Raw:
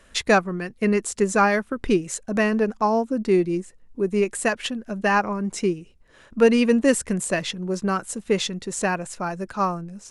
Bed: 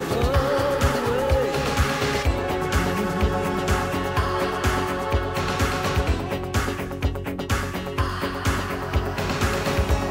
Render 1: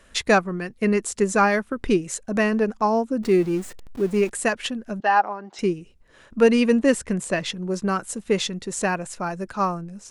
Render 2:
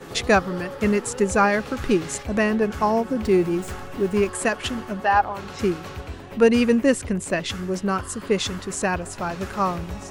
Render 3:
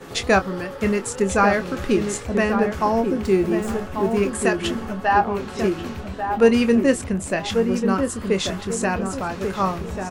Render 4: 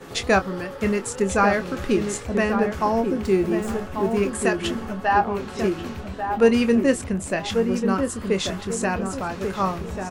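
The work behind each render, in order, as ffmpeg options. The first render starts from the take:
-filter_complex "[0:a]asettb=1/sr,asplit=3[s0][s1][s2];[s0]atrim=end=3.234[s3];[s1]atrim=start=3.23:end=4.3,asetpts=PTS-STARTPTS,afade=t=in:d=0.004:c=qsin,afade=t=out:st=1.066:d=0.004:c=qsin,aeval=exprs='val(0)+0.5*0.0168*sgn(val(0))':c=same[s4];[s2]atrim=start=4.296[s5];[s3][s4]acrossfade=d=0.004:c1=hsin:c2=qsin[s6];[s6][s5]acrossfade=d=0.004:c1=qsin:c2=hsin,asettb=1/sr,asplit=3[s7][s8][s9];[s7]atrim=end=5.004[s10];[s8]atrim=start=5:end=5.59,asetpts=PTS-STARTPTS,afade=t=in:d=0.004:c=qsin,afade=t=out:st=0.586:d=0.004:c=qsin,highpass=490,equalizer=f=490:t=q:w=4:g=-6,equalizer=f=790:t=q:w=4:g=8,equalizer=f=1100:t=q:w=4:g=-4,equalizer=f=2300:t=q:w=4:g=-9,lowpass=f=4500:w=0.5412,lowpass=f=4500:w=1.3066[s11];[s9]atrim=start=5.586[s12];[s10][s11]acrossfade=d=0.004:c1=hsin:c2=qsin[s13];[s13][s12]acrossfade=d=0.004:c1=qsin:c2=hsin,asettb=1/sr,asplit=3[s14][s15][s16];[s14]atrim=end=6.824[s17];[s15]atrim=start=6.82:end=7.46,asetpts=PTS-STARTPTS,afade=t=in:d=0.004:c=qsin,afade=t=out:st=0.636:d=0.004:c=qsin,highshelf=f=8400:g=-10.5[s18];[s16]atrim=start=7.456[s19];[s17][s18]acrossfade=d=0.004:c1=hsin:c2=qsin[s20];[s20][s19]acrossfade=d=0.004:c1=qsin:c2=hsin"
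-filter_complex "[1:a]volume=0.237[s0];[0:a][s0]amix=inputs=2:normalize=0"
-filter_complex "[0:a]asplit=2[s0][s1];[s1]adelay=26,volume=0.282[s2];[s0][s2]amix=inputs=2:normalize=0,asplit=2[s3][s4];[s4]adelay=1141,lowpass=f=1000:p=1,volume=0.562,asplit=2[s5][s6];[s6]adelay=1141,lowpass=f=1000:p=1,volume=0.38,asplit=2[s7][s8];[s8]adelay=1141,lowpass=f=1000:p=1,volume=0.38,asplit=2[s9][s10];[s10]adelay=1141,lowpass=f=1000:p=1,volume=0.38,asplit=2[s11][s12];[s12]adelay=1141,lowpass=f=1000:p=1,volume=0.38[s13];[s3][s5][s7][s9][s11][s13]amix=inputs=6:normalize=0"
-af "volume=0.841"

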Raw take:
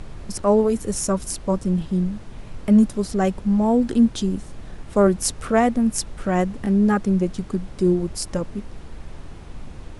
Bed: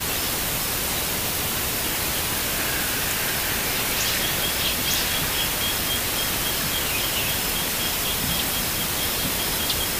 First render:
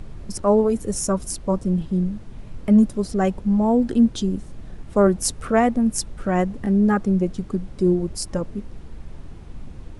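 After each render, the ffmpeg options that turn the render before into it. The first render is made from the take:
-af "afftdn=nr=6:nf=-39"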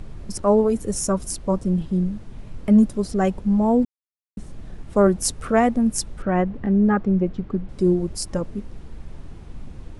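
-filter_complex "[0:a]asettb=1/sr,asplit=3[s0][s1][s2];[s0]atrim=end=6.224[s3];[s1]atrim=start=6.22:end=7.69,asetpts=PTS-STARTPTS,afade=t=in:d=0.004:c=qsin,afade=t=out:st=1.466:d=0.004:c=qsin,lowpass=2800[s4];[s2]atrim=start=7.686[s5];[s3][s4]acrossfade=d=0.004:c1=hsin:c2=qsin[s6];[s6][s5]acrossfade=d=0.004:c1=qsin:c2=hsin,asplit=3[s7][s8][s9];[s7]atrim=end=3.85,asetpts=PTS-STARTPTS,afade=t=out:st=3.846:d=0.004:c=hsin[s10];[s8]atrim=start=3.85:end=4.37,asetpts=PTS-STARTPTS,volume=0[s11];[s9]atrim=start=4.37,asetpts=PTS-STARTPTS,afade=t=in:d=0.004:c=hsin[s12];[s10][s11][s12]concat=n=3:v=0:a=1"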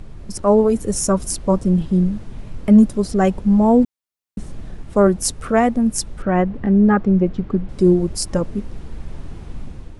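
-af "dynaudnorm=f=170:g=5:m=2"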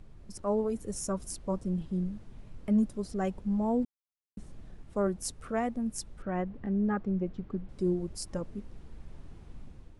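-af "volume=0.168"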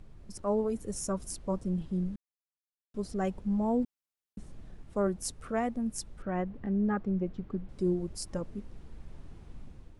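-filter_complex "[0:a]asplit=3[s0][s1][s2];[s0]atrim=end=2.16,asetpts=PTS-STARTPTS,afade=t=out:st=2.156:d=0.004:c=hsin[s3];[s1]atrim=start=2.16:end=2.94,asetpts=PTS-STARTPTS,volume=0[s4];[s2]atrim=start=2.94,asetpts=PTS-STARTPTS,afade=t=in:d=0.004:c=hsin[s5];[s3][s4][s5]concat=n=3:v=0:a=1"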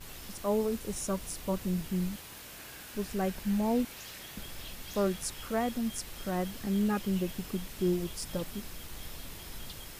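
-filter_complex "[1:a]volume=0.075[s0];[0:a][s0]amix=inputs=2:normalize=0"

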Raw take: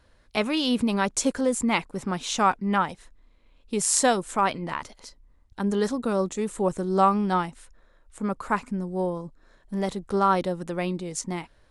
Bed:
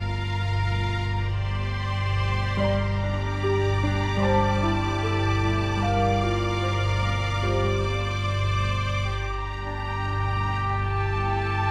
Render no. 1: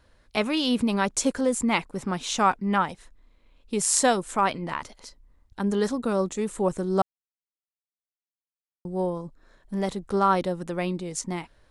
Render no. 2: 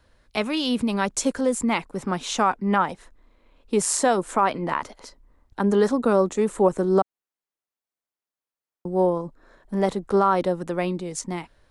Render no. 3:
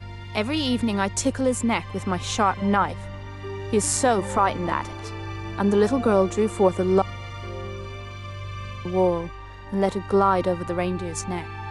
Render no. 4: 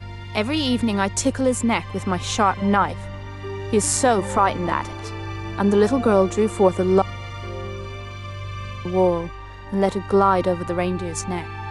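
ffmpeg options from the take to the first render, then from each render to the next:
-filter_complex "[0:a]asplit=3[s0][s1][s2];[s0]atrim=end=7.02,asetpts=PTS-STARTPTS,afade=t=out:st=7.016:d=0.004:c=hsin[s3];[s1]atrim=start=7.02:end=8.85,asetpts=PTS-STARTPTS,volume=0[s4];[s2]atrim=start=8.85,asetpts=PTS-STARTPTS,afade=t=in:d=0.004:c=hsin[s5];[s3][s4][s5]concat=n=3:v=0:a=1"
-filter_complex "[0:a]acrossover=split=230|1800[s0][s1][s2];[s1]dynaudnorm=f=920:g=5:m=3.76[s3];[s0][s3][s2]amix=inputs=3:normalize=0,alimiter=limit=0.355:level=0:latency=1:release=137"
-filter_complex "[1:a]volume=0.316[s0];[0:a][s0]amix=inputs=2:normalize=0"
-af "volume=1.33"

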